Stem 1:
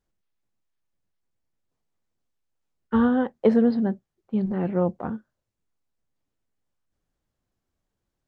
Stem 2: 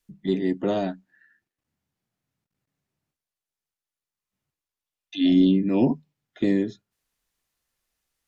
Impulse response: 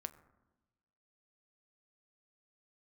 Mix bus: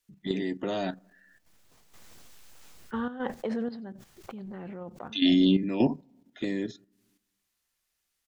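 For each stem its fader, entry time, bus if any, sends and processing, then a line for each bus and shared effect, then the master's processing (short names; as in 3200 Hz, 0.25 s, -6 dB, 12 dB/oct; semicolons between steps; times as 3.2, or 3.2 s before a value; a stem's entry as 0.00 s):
-7.5 dB, 0.00 s, no send, echo send -22.5 dB, backwards sustainer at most 21 dB/s
+2.0 dB, 0.00 s, send -12.5 dB, no echo send, dry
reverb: on, RT60 1.1 s, pre-delay 6 ms
echo: echo 93 ms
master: tilt shelf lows -4.5 dB; level quantiser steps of 10 dB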